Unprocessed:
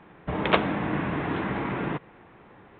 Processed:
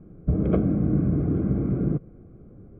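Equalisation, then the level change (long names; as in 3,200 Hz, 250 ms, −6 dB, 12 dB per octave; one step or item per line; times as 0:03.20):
moving average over 48 samples
spectral tilt −3.5 dB per octave
0.0 dB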